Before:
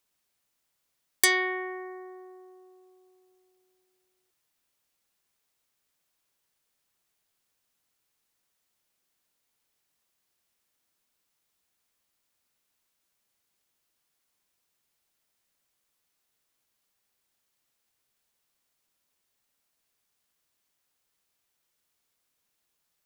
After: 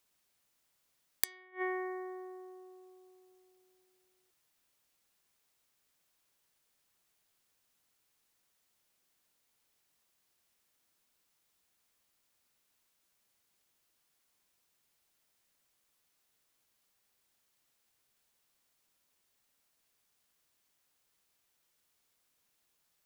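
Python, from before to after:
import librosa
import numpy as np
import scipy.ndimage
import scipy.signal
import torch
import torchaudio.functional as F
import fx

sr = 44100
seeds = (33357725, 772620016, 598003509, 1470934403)

y = fx.gate_flip(x, sr, shuts_db=-24.0, range_db=-31)
y = y * 10.0 ** (1.0 / 20.0)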